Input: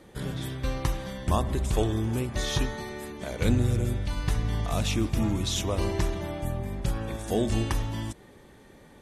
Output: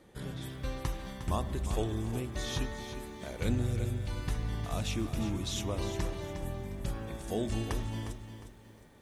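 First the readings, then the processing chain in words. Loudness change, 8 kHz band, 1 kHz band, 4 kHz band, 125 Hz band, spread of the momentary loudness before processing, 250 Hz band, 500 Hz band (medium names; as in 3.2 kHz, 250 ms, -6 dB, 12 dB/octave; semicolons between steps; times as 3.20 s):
-6.5 dB, -6.5 dB, -6.5 dB, -6.5 dB, -6.5 dB, 8 LU, -6.5 dB, -6.5 dB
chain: bit-crushed delay 357 ms, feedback 35%, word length 9-bit, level -10 dB; trim -7 dB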